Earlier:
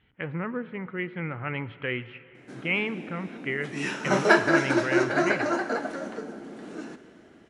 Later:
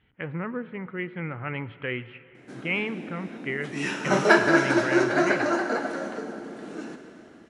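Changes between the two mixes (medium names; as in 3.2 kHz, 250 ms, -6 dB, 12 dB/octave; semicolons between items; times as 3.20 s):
speech: add distance through air 85 m; background: send +6.5 dB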